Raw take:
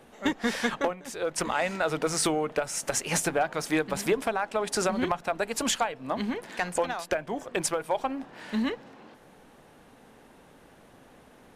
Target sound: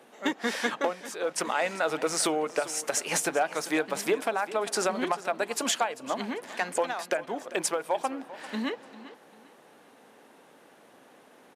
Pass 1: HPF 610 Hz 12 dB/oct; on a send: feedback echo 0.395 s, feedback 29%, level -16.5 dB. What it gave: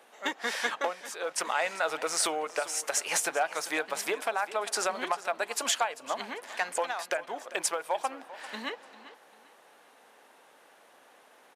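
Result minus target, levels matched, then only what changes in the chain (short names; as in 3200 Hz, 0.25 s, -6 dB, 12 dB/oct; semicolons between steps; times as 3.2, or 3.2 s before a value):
250 Hz band -9.0 dB
change: HPF 270 Hz 12 dB/oct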